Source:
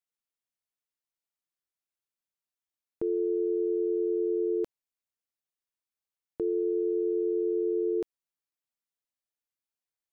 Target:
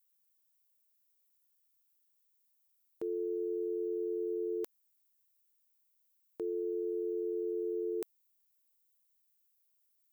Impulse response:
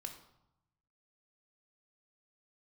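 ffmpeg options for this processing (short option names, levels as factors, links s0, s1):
-af "aemphasis=mode=production:type=riaa,volume=0.668"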